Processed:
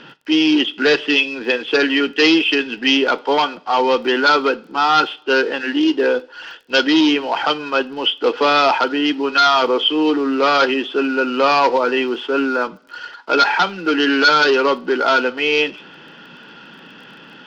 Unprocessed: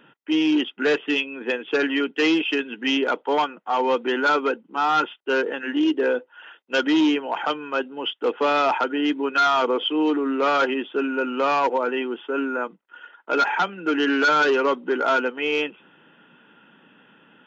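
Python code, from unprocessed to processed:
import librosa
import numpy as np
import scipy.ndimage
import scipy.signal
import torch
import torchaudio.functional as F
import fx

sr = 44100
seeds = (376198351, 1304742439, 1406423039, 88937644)

p1 = fx.law_mismatch(x, sr, coded='mu')
p2 = fx.rider(p1, sr, range_db=10, speed_s=2.0)
p3 = p1 + (p2 * 10.0 ** (2.5 / 20.0))
p4 = fx.lowpass_res(p3, sr, hz=4800.0, q=3.8)
p5 = fx.rev_double_slope(p4, sr, seeds[0], early_s=0.32, late_s=1.5, knee_db=-22, drr_db=14.0)
p6 = fx.dmg_crackle(p5, sr, seeds[1], per_s=18.0, level_db=-36.0)
y = p6 * 10.0 ** (-3.0 / 20.0)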